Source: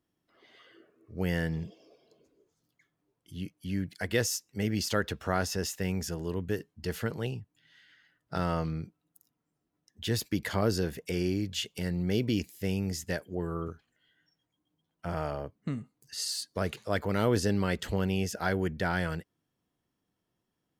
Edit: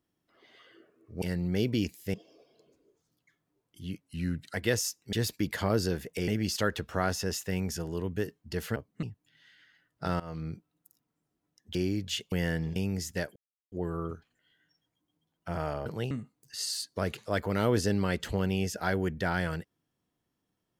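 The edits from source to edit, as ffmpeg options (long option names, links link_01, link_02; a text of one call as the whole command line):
ffmpeg -i in.wav -filter_complex "[0:a]asplit=16[link_01][link_02][link_03][link_04][link_05][link_06][link_07][link_08][link_09][link_10][link_11][link_12][link_13][link_14][link_15][link_16];[link_01]atrim=end=1.222[link_17];[link_02]atrim=start=11.768:end=12.692[link_18];[link_03]atrim=start=1.658:end=3.524[link_19];[link_04]atrim=start=3.52:end=4.01,asetpts=PTS-STARTPTS,asetrate=40131,aresample=44100,atrim=end_sample=23746,asetpts=PTS-STARTPTS[link_20];[link_05]atrim=start=4.006:end=4.602[link_21];[link_06]atrim=start=10.048:end=11.202[link_22];[link_07]atrim=start=4.598:end=7.082[link_23];[link_08]atrim=start=15.428:end=15.702[link_24];[link_09]atrim=start=7.328:end=8.5,asetpts=PTS-STARTPTS,afade=type=out:start_time=1.168:duration=0.004:curve=hsin:silence=0.0841395[link_25];[link_10]atrim=start=8.5:end=10.052,asetpts=PTS-STARTPTS,afade=type=in:duration=0.33:silence=0.0841395[link_26];[link_11]atrim=start=11.198:end=11.772[link_27];[link_12]atrim=start=1.218:end=1.662[link_28];[link_13]atrim=start=12.688:end=13.29,asetpts=PTS-STARTPTS,afade=type=out:start_time=0.598:duration=0.004:curve=hsin,apad=pad_dur=0.36[link_29];[link_14]atrim=start=13.29:end=15.432,asetpts=PTS-STARTPTS,afade=type=in:duration=0.004:curve=hsin[link_30];[link_15]atrim=start=7.078:end=7.332[link_31];[link_16]atrim=start=15.698[link_32];[link_17][link_18]acrossfade=duration=0.004:curve1=hsin:curve2=hsin[link_33];[link_33][link_19]acrossfade=duration=0.004:curve1=hsin:curve2=hsin[link_34];[link_34][link_20]acrossfade=duration=0.004:curve1=hsin:curve2=hsin[link_35];[link_35][link_21]acrossfade=duration=0.004:curve1=hsin:curve2=hsin[link_36];[link_36][link_22]acrossfade=duration=0.004:curve1=hsin:curve2=hsin[link_37];[link_37][link_23]acrossfade=duration=0.004:curve1=hsin:curve2=hsin[link_38];[link_38][link_24]acrossfade=duration=0.004:curve1=hsin:curve2=hsin[link_39];[link_25][link_26]concat=n=2:v=0:a=1[link_40];[link_39][link_40]acrossfade=duration=0.004:curve1=hsin:curve2=hsin[link_41];[link_41][link_27]acrossfade=duration=0.004:curve1=hsin:curve2=hsin[link_42];[link_42][link_28]acrossfade=duration=0.004:curve1=hsin:curve2=hsin[link_43];[link_29][link_30]concat=n=2:v=0:a=1[link_44];[link_43][link_44]acrossfade=duration=0.004:curve1=hsin:curve2=hsin[link_45];[link_45][link_31]acrossfade=duration=0.004:curve1=hsin:curve2=hsin[link_46];[link_46][link_32]acrossfade=duration=0.004:curve1=hsin:curve2=hsin" out.wav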